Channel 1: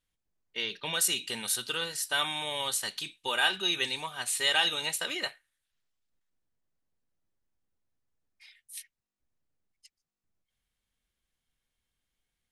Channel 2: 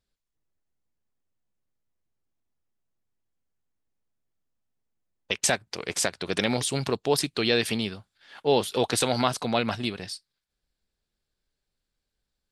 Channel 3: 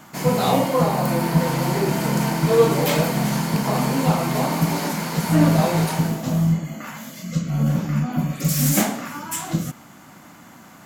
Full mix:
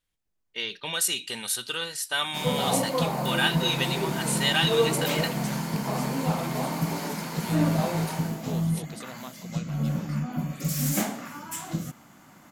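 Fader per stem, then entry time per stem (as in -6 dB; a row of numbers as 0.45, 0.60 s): +1.5, -18.5, -7.5 dB; 0.00, 0.00, 2.20 s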